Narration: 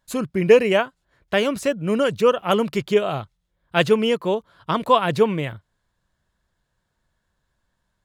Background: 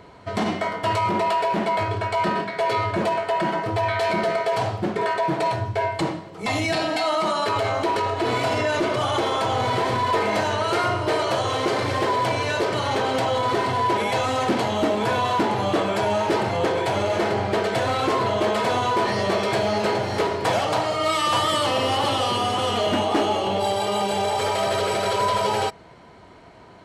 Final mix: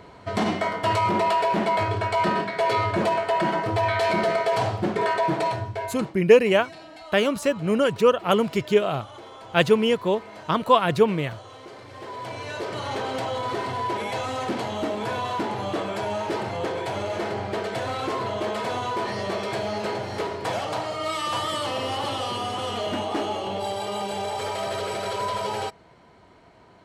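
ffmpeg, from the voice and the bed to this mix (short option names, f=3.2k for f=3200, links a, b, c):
-filter_complex "[0:a]adelay=5800,volume=-1dB[a];[1:a]volume=14dB,afade=t=out:st=5.26:d=0.9:silence=0.1,afade=t=in:st=11.89:d=1.03:silence=0.199526[b];[a][b]amix=inputs=2:normalize=0"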